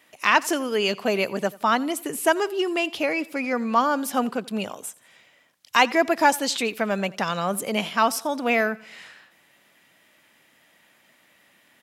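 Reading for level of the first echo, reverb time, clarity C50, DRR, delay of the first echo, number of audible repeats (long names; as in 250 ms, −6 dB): −22.0 dB, no reverb audible, no reverb audible, no reverb audible, 87 ms, 2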